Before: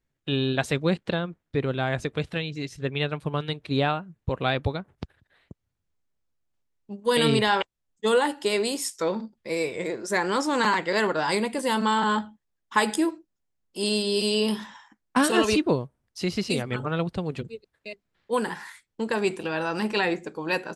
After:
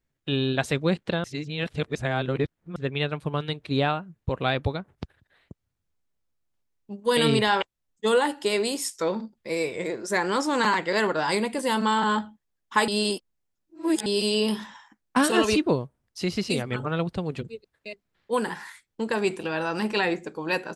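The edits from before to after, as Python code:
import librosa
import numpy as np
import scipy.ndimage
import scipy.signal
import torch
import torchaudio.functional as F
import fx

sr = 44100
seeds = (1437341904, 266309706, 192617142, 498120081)

y = fx.edit(x, sr, fx.reverse_span(start_s=1.24, length_s=1.52),
    fx.reverse_span(start_s=12.88, length_s=1.18), tone=tone)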